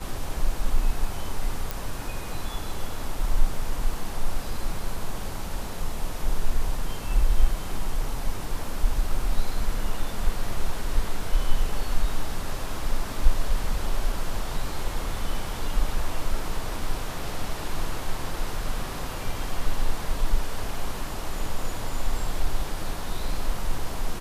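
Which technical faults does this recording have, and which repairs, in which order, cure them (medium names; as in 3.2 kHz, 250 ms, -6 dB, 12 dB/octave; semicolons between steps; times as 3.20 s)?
1.71 s: pop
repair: de-click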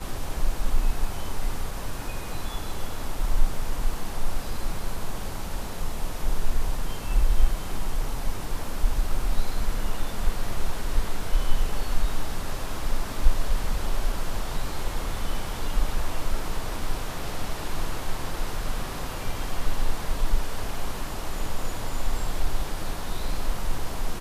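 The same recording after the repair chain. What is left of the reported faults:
nothing left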